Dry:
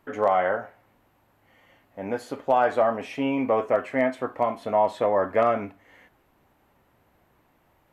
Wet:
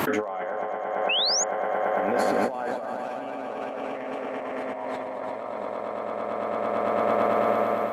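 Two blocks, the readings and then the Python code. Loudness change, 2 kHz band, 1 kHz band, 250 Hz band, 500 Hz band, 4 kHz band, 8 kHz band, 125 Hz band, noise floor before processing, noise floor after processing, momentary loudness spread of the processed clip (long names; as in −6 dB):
−2.5 dB, +1.0 dB, −0.5 dB, −2.0 dB, −1.0 dB, +17.0 dB, can't be measured, −2.0 dB, −65 dBFS, −34 dBFS, 10 LU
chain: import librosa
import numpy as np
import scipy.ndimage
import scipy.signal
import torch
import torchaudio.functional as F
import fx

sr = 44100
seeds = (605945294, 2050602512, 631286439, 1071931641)

y = scipy.signal.sosfilt(scipy.signal.butter(2, 160.0, 'highpass', fs=sr, output='sos'), x)
y = fx.echo_swell(y, sr, ms=112, loudest=5, wet_db=-4.0)
y = fx.over_compress(y, sr, threshold_db=-30.0, ratio=-1.0)
y = fx.spec_paint(y, sr, seeds[0], shape='rise', start_s=1.09, length_s=0.35, low_hz=2500.0, high_hz=7100.0, level_db=-24.0)
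y = fx.pre_swell(y, sr, db_per_s=28.0)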